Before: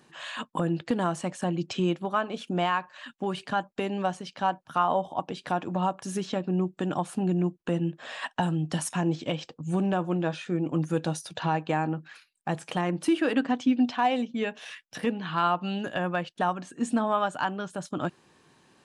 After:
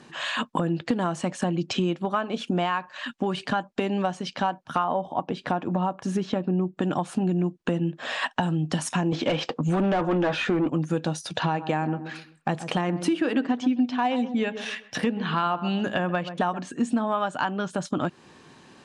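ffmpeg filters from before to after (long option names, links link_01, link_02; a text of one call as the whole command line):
ffmpeg -i in.wav -filter_complex "[0:a]asettb=1/sr,asplit=3[link_01][link_02][link_03];[link_01]atrim=end=4.844[link_04];[link_02]atrim=start=4.84:end=6.82,asetpts=PTS-STARTPTS,afade=type=in:duration=0.004:curve=qsin,afade=type=out:start_time=1.976:duration=0.004:curve=qsin,highshelf=frequency=3100:gain=-9.5[link_05];[link_03]atrim=start=6.816[link_06];[link_04][link_05]acrossfade=duration=0.004:curve1=hsin:curve2=qsin[link_07];[link_07][link_06]acrossfade=duration=0.004:curve1=qsin:curve2=hsin,asettb=1/sr,asplit=3[link_08][link_09][link_10];[link_08]atrim=end=9.124[link_11];[link_09]atrim=start=9.12:end=10.69,asetpts=PTS-STARTPTS,afade=type=in:duration=0.004:curve=qsin,afade=type=out:start_time=1.566:duration=0.004:curve=qsin,asplit=2[link_12][link_13];[link_13]highpass=frequency=720:poles=1,volume=23dB,asoftclip=type=tanh:threshold=-14.5dB[link_14];[link_12][link_14]amix=inputs=2:normalize=0,lowpass=frequency=1500:poles=1,volume=-6dB[link_15];[link_10]atrim=start=10.686[link_16];[link_11][link_15]acrossfade=duration=0.004:curve1=hsin:curve2=qsin[link_17];[link_17][link_16]acrossfade=duration=0.004:curve1=qsin:curve2=hsin,asettb=1/sr,asplit=3[link_18][link_19][link_20];[link_18]atrim=end=11.214[link_21];[link_19]atrim=start=11.21:end=16.59,asetpts=PTS-STARTPTS,afade=type=in:duration=0.004:curve=qsin,afade=type=out:start_time=5.376:duration=0.004:curve=qsin,asplit=2[link_22][link_23];[link_23]adelay=129,lowpass=frequency=1100:poles=1,volume=-13dB,asplit=2[link_24][link_25];[link_25]adelay=129,lowpass=frequency=1100:poles=1,volume=0.31,asplit=2[link_26][link_27];[link_27]adelay=129,lowpass=frequency=1100:poles=1,volume=0.31[link_28];[link_22][link_24][link_26][link_28]amix=inputs=4:normalize=0,atrim=end_sample=237258[link_29];[link_20]atrim=start=16.586[link_30];[link_21][link_29]acrossfade=duration=0.004:curve1=hsin:curve2=qsin[link_31];[link_31][link_30]acrossfade=duration=0.004:curve1=qsin:curve2=hsin,lowpass=7800,equalizer=frequency=240:width_type=o:width=0.44:gain=3,acompressor=threshold=-33dB:ratio=3,volume=9dB" out.wav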